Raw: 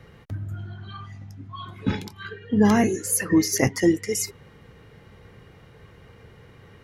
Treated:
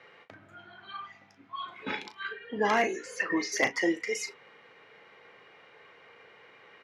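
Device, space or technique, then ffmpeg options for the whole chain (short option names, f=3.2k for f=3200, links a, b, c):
megaphone: -filter_complex "[0:a]asettb=1/sr,asplit=3[a][b][c];[a]atrim=end=2.994[d];[b]atrim=start=2.99:end=3.52,asetpts=PTS-STARTPTS,afade=t=in:d=0.004:c=qsin,afade=t=out:st=0.526:d=0.004:c=qsin,lowpass=5.8k[e];[c]atrim=start=3.516[f];[d][e]acrossfade=d=0.004:c1=hsin:c2=qsin[g];[g][f]acrossfade=d=0.004:c1=qsin:c2=hsin,highpass=570,lowpass=3.9k,equalizer=f=2.3k:t=o:w=0.34:g=5,asoftclip=type=hard:threshold=-16dB,asplit=2[h][i];[i]adelay=36,volume=-11dB[j];[h][j]amix=inputs=2:normalize=0"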